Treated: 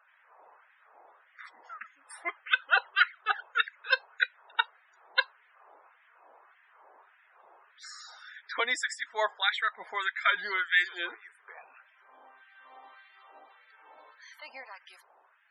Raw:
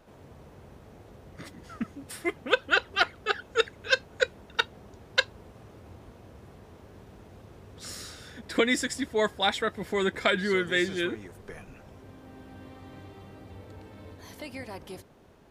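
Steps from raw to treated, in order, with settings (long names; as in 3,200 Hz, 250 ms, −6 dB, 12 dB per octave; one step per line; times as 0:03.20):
auto-filter high-pass sine 1.7 Hz 810–1,800 Hz
spectral peaks only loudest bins 64
level −3 dB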